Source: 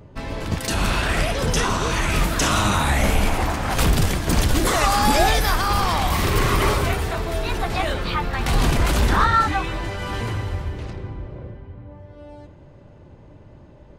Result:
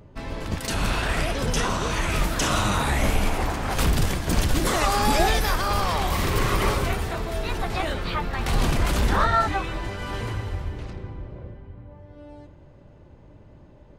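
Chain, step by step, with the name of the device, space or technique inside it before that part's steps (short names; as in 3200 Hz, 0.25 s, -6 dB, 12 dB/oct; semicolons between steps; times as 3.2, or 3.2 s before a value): octave pedal (harmoniser -12 st -8 dB); gain -4 dB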